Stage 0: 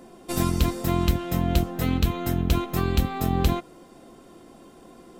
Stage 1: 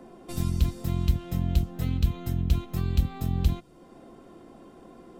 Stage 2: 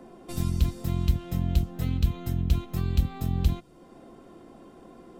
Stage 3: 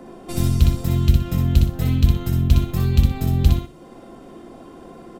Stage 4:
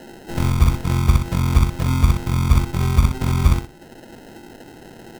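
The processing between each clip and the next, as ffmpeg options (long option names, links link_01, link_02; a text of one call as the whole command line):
ffmpeg -i in.wav -filter_complex "[0:a]highshelf=frequency=3100:gain=-10.5,acrossover=split=180|3000[link_01][link_02][link_03];[link_02]acompressor=threshold=-44dB:ratio=3[link_04];[link_01][link_04][link_03]amix=inputs=3:normalize=0" out.wav
ffmpeg -i in.wav -af anull out.wav
ffmpeg -i in.wav -af "aecho=1:1:61|122|183:0.668|0.16|0.0385,volume=7dB" out.wav
ffmpeg -i in.wav -af "acrusher=samples=38:mix=1:aa=0.000001" out.wav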